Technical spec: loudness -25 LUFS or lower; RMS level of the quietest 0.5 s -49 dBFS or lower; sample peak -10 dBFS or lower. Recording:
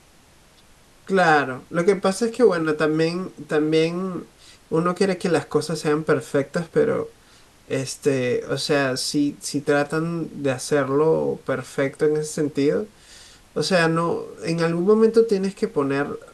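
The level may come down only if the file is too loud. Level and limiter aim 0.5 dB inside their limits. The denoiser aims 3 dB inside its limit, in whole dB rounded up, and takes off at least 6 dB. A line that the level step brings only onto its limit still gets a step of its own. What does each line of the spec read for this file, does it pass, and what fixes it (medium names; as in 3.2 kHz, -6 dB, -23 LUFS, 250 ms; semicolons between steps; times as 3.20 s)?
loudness -22.0 LUFS: fail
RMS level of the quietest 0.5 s -53 dBFS: pass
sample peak -5.5 dBFS: fail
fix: trim -3.5 dB; peak limiter -10.5 dBFS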